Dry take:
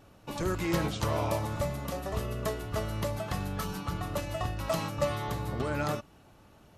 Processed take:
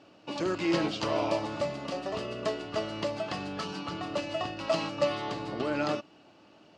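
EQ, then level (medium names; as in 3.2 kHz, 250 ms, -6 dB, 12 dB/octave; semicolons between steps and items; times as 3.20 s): distance through air 64 m; cabinet simulation 200–8500 Hz, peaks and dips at 310 Hz +7 dB, 630 Hz +4 dB, 2.8 kHz +8 dB, 4.7 kHz +9 dB; 0.0 dB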